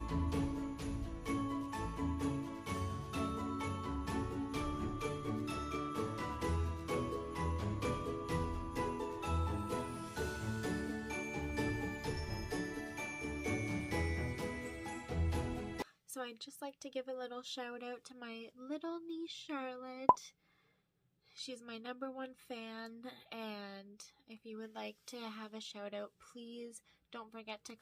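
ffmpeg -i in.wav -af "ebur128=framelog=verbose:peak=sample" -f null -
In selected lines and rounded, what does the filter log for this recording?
Integrated loudness:
  I:         -41.0 LUFS
  Threshold: -51.2 LUFS
Loudness range:
  LRA:         9.0 LU
  Threshold: -61.2 LUFS
  LRA low:   -48.4 LUFS
  LRA high:  -39.4 LUFS
Sample peak:
  Peak:      -12.6 dBFS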